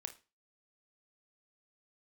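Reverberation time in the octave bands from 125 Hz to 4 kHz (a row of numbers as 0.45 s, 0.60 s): 0.35 s, 0.30 s, 0.30 s, 0.30 s, 0.30 s, 0.30 s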